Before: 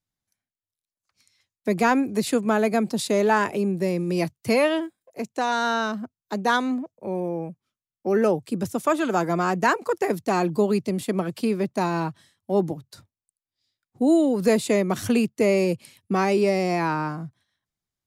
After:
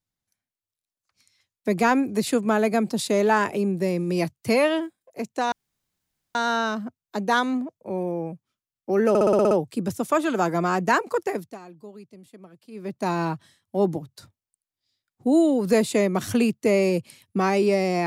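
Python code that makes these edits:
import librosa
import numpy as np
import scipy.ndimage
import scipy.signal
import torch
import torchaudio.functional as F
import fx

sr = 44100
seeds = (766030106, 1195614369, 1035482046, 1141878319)

y = fx.edit(x, sr, fx.insert_room_tone(at_s=5.52, length_s=0.83),
    fx.stutter(start_s=8.26, slice_s=0.06, count=8),
    fx.fade_down_up(start_s=9.91, length_s=1.98, db=-21.5, fade_s=0.43), tone=tone)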